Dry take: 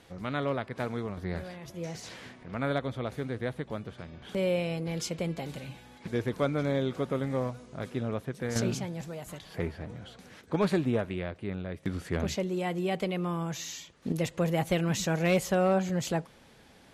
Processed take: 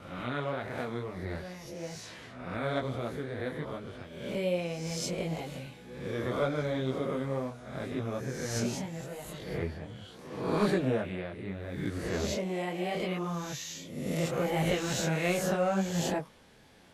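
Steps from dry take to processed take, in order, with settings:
peak hold with a rise ahead of every peak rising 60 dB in 0.93 s
tape wow and flutter 17 cents
micro pitch shift up and down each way 26 cents

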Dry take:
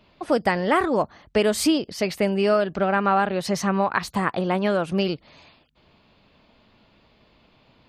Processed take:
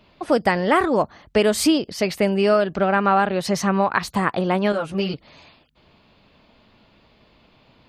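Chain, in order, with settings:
0:04.72–0:05.14: string-ensemble chorus
level +2.5 dB

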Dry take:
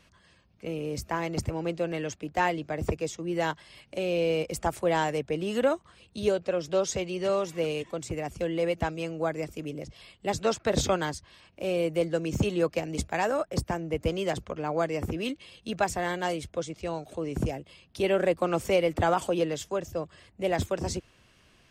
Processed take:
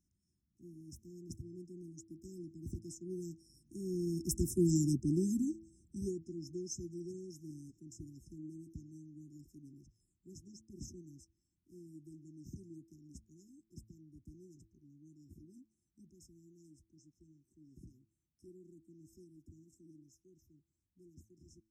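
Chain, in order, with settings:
source passing by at 0:04.76, 19 m/s, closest 6.5 metres
linear-phase brick-wall band-stop 380–5,100 Hz
hum removal 109.4 Hz, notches 27
level +5.5 dB

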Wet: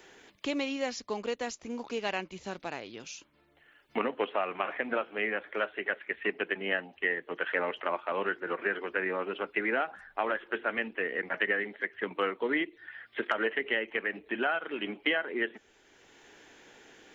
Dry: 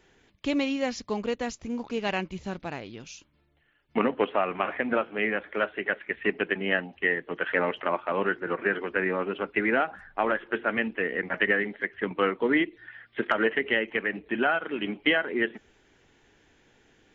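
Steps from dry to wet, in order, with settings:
bass and treble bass −10 dB, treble +4 dB
multiband upward and downward compressor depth 40%
level −4 dB

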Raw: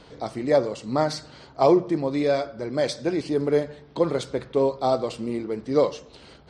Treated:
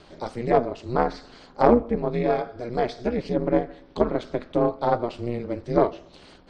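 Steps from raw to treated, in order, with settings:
harmonic generator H 2 −14 dB, 3 −23 dB, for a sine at −6 dBFS
ring modulation 120 Hz
treble cut that deepens with the level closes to 2,300 Hz, closed at −24 dBFS
level +4 dB

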